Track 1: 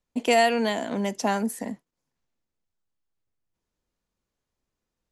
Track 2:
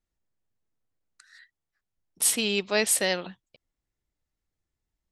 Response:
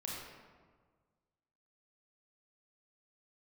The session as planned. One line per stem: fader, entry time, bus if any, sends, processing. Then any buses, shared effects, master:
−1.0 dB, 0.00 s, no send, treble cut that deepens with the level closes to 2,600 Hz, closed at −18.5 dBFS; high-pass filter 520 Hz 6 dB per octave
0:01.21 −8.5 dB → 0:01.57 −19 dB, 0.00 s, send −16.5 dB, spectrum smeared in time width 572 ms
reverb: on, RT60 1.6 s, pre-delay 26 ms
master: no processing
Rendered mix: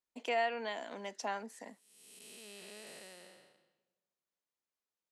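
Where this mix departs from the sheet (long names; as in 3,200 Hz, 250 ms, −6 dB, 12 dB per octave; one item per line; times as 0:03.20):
stem 1 −1.0 dB → −9.5 dB
master: extra high-pass filter 320 Hz 6 dB per octave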